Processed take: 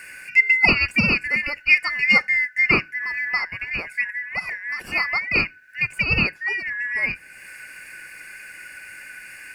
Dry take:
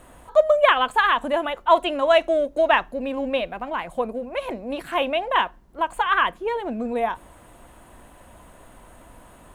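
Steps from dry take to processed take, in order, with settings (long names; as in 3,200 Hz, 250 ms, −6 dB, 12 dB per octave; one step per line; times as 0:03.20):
band-splitting scrambler in four parts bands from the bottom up 2143
one half of a high-frequency compander encoder only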